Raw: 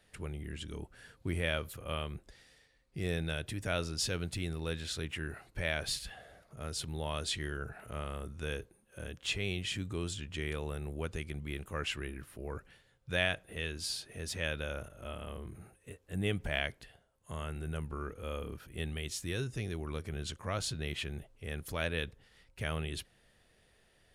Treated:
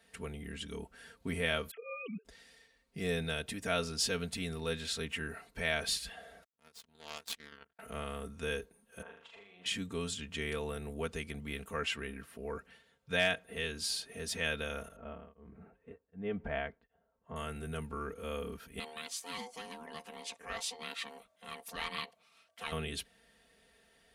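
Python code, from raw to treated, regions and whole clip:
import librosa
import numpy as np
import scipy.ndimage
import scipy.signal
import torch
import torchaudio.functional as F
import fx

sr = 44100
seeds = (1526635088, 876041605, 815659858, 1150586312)

y = fx.chain(x, sr, fx.sine_speech(),
    fx.fixed_phaser(hz=2400.0, stages=4), at=(1.71, 2.25))
y = fx.chain(y, sr, fx.lowpass(hz=3700.0, slope=6),
    fx.high_shelf(hz=2100.0, db=8.5),
    fx.power_curve(exponent=3.0), at=(6.44, 7.79))
y = fx.chain(y, sr, fx.over_compress(threshold_db=-39.0, ratio=-0.5),
    fx.bandpass_q(hz=960.0, q=2.6),
    fx.room_flutter(wall_m=6.7, rt60_s=0.54), at=(9.02, 9.66))
y = fx.chain(y, sr, fx.highpass(hz=55.0, slope=12),
    fx.high_shelf(hz=6900.0, db=-5.0),
    fx.overload_stage(gain_db=18.5), at=(11.76, 13.56))
y = fx.chain(y, sr, fx.lowpass(hz=1400.0, slope=12),
    fx.tremolo_abs(hz=1.3), at=(14.96, 17.36))
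y = fx.chain(y, sr, fx.low_shelf(hz=400.0, db=-12.0),
    fx.ring_mod(carrier_hz=620.0),
    fx.doppler_dist(depth_ms=0.12), at=(18.79, 22.72))
y = scipy.signal.sosfilt(scipy.signal.butter(2, 46.0, 'highpass', fs=sr, output='sos'), y)
y = fx.low_shelf(y, sr, hz=150.0, db=-5.0)
y = y + 0.79 * np.pad(y, (int(4.4 * sr / 1000.0), 0))[:len(y)]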